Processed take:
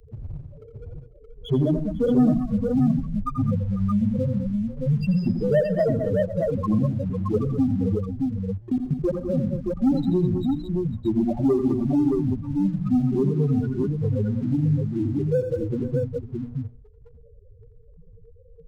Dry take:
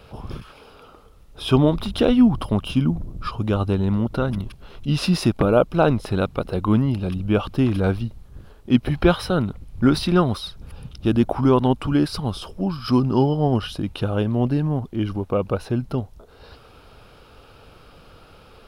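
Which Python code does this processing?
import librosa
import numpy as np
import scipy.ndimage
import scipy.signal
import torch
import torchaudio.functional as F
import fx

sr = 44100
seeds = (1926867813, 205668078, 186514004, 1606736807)

p1 = fx.wiener(x, sr, points=25)
p2 = fx.peak_eq(p1, sr, hz=860.0, db=3.0, octaves=2.7)
p3 = fx.spec_topn(p2, sr, count=2)
p4 = fx.hum_notches(p3, sr, base_hz=60, count=5)
p5 = np.clip(10.0 ** (14.0 / 20.0) * p4, -1.0, 1.0) / 10.0 ** (14.0 / 20.0)
p6 = p4 + F.gain(torch.from_numpy(p5), -6.0).numpy()
p7 = fx.level_steps(p6, sr, step_db=19, at=(7.95, 9.15))
p8 = fx.leveller(p7, sr, passes=1)
p9 = fx.high_shelf(p8, sr, hz=3900.0, db=6.0)
p10 = p9 + fx.echo_multitap(p9, sr, ms=(85, 124, 198, 209, 496, 622), db=(-8.5, -18.0, -16.5, -11.5, -19.0, -5.0), dry=0)
p11 = fx.band_squash(p10, sr, depth_pct=40)
y = F.gain(torch.from_numpy(p11), -6.0).numpy()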